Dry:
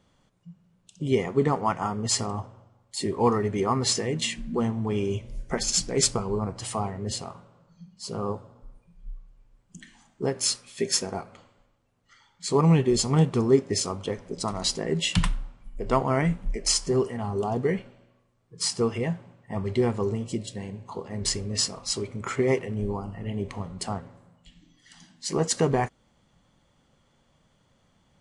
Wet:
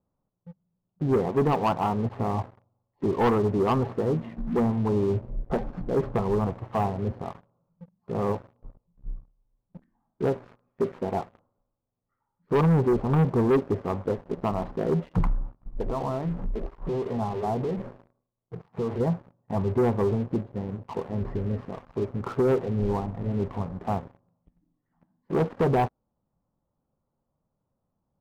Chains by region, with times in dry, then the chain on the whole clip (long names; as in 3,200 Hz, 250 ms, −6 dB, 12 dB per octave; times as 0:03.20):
0:15.81–0:19.00: downward compressor 20 to 1, threshold −33 dBFS + leveller curve on the samples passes 2 + mains-hum notches 50/100/150/200/250/300/350/400 Hz
whole clip: low-pass filter 1,100 Hz 24 dB per octave; dynamic equaliser 780 Hz, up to +3 dB, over −38 dBFS, Q 1.3; leveller curve on the samples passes 3; level −7.5 dB